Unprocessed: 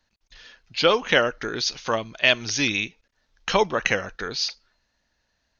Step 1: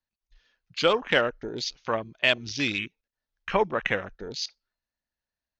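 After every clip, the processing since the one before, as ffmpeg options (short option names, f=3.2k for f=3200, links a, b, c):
-af "afwtdn=0.0316,highshelf=f=5.3k:g=-4.5,volume=-3dB"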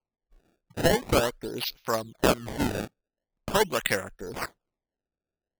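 -af "acrusher=samples=24:mix=1:aa=0.000001:lfo=1:lforange=38.4:lforate=0.43"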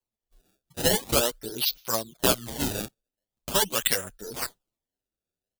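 -filter_complex "[0:a]aexciter=amount=2.8:drive=6.1:freq=3k,asplit=2[a][b];[b]adelay=7.7,afreqshift=2.2[c];[a][c]amix=inputs=2:normalize=1"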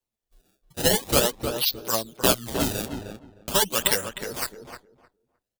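-filter_complex "[0:a]asplit=2[a][b];[b]acrusher=bits=4:mode=log:mix=0:aa=0.000001,volume=-12dB[c];[a][c]amix=inputs=2:normalize=0,asplit=2[d][e];[e]adelay=308,lowpass=f=1.7k:p=1,volume=-6dB,asplit=2[f][g];[g]adelay=308,lowpass=f=1.7k:p=1,volume=0.18,asplit=2[h][i];[i]adelay=308,lowpass=f=1.7k:p=1,volume=0.18[j];[d][f][h][j]amix=inputs=4:normalize=0"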